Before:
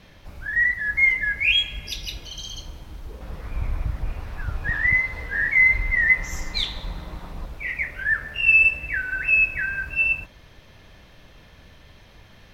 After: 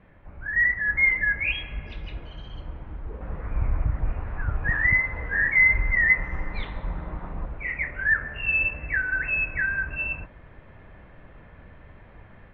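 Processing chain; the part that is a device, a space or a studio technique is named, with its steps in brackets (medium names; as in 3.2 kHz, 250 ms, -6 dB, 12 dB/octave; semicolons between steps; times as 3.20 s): action camera in a waterproof case (low-pass 2 kHz 24 dB/octave; level rider gain up to 6 dB; trim -4 dB; AAC 48 kbps 32 kHz)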